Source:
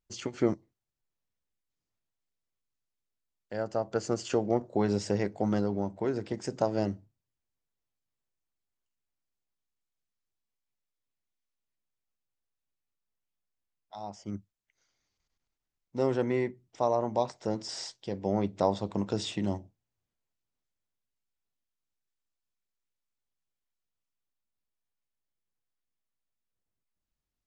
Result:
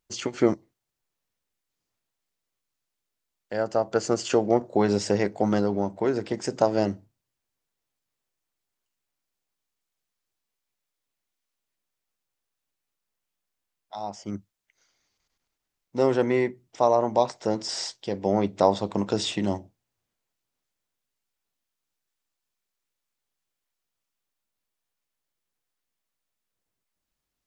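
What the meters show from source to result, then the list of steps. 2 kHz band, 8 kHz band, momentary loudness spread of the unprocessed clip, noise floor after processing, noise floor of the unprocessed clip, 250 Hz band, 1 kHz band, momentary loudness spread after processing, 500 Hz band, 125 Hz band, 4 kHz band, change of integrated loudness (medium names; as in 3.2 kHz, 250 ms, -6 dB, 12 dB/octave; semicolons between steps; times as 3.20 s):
+7.5 dB, +7.5 dB, 12 LU, -84 dBFS, under -85 dBFS, +5.0 dB, +7.0 dB, 13 LU, +6.5 dB, +2.5 dB, +7.5 dB, +6.0 dB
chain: bass shelf 180 Hz -8 dB; trim +7.5 dB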